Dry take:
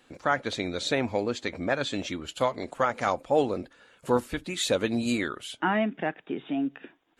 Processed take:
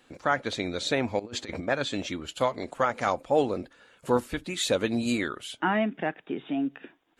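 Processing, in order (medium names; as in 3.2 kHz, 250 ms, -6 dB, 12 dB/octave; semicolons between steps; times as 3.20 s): 1.19–1.68 s: compressor with a negative ratio -35 dBFS, ratio -0.5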